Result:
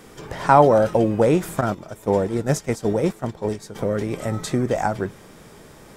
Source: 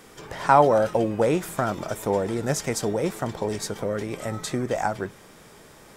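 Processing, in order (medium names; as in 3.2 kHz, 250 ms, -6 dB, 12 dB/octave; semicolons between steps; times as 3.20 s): bass shelf 490 Hz +6 dB; 1.61–3.75 s: gate -22 dBFS, range -11 dB; trim +1 dB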